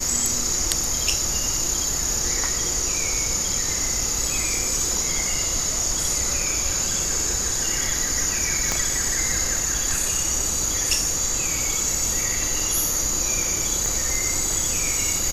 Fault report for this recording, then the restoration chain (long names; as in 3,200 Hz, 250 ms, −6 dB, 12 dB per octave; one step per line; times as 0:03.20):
0:08.72: click −6 dBFS
0:13.86: click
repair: click removal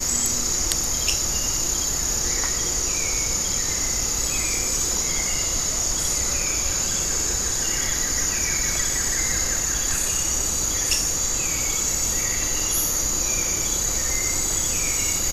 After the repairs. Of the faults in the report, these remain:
0:08.72: click
0:13.86: click